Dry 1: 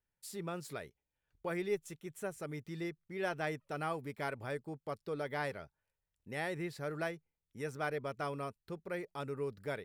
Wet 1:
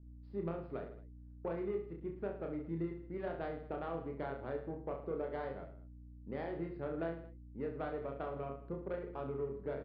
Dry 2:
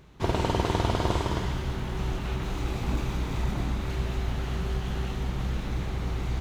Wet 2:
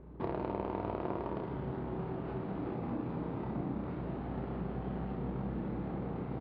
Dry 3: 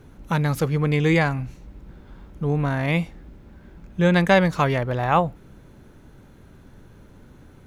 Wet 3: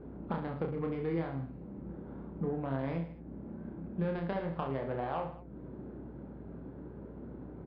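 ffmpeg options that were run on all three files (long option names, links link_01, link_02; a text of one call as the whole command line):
ffmpeg -i in.wav -af "highpass=200,alimiter=limit=-13dB:level=0:latency=1:release=324,acompressor=threshold=-43dB:ratio=3,aeval=exprs='val(0)+0.001*(sin(2*PI*60*n/s)+sin(2*PI*2*60*n/s)/2+sin(2*PI*3*60*n/s)/3+sin(2*PI*4*60*n/s)/4+sin(2*PI*5*60*n/s)/5)':channel_layout=same,adynamicsmooth=sensitivity=2:basefreq=620,aecho=1:1:30|66|109.2|161|223.2:0.631|0.398|0.251|0.158|0.1,aresample=11025,aresample=44100,volume=6dB" out.wav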